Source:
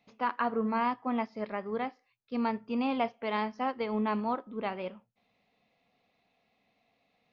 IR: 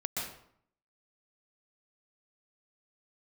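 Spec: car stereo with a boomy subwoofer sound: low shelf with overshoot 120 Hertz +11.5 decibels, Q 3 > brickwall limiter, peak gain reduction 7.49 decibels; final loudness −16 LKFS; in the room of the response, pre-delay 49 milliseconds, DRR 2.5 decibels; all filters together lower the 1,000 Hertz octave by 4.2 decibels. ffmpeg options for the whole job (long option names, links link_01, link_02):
-filter_complex "[0:a]equalizer=frequency=1000:width_type=o:gain=-5,asplit=2[link_01][link_02];[1:a]atrim=start_sample=2205,adelay=49[link_03];[link_02][link_03]afir=irnorm=-1:irlink=0,volume=-6.5dB[link_04];[link_01][link_04]amix=inputs=2:normalize=0,lowshelf=frequency=120:width_type=q:width=3:gain=11.5,volume=20.5dB,alimiter=limit=-6dB:level=0:latency=1"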